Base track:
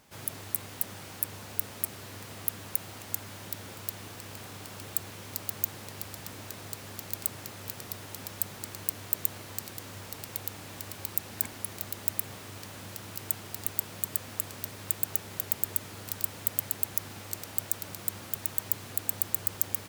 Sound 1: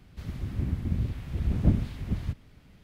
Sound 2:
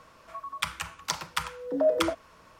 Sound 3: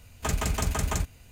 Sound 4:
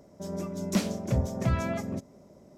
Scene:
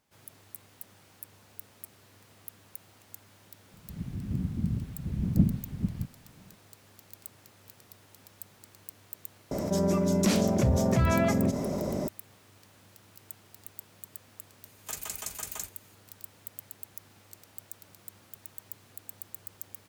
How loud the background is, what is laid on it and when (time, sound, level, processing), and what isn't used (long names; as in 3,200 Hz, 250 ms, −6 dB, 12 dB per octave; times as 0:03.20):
base track −14 dB
0:03.72: mix in 1 −10.5 dB + parametric band 180 Hz +14.5 dB 1.6 octaves
0:09.51: mix in 4 −0.5 dB + envelope flattener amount 70%
0:14.64: mix in 3 −13.5 dB + RIAA equalisation recording
not used: 2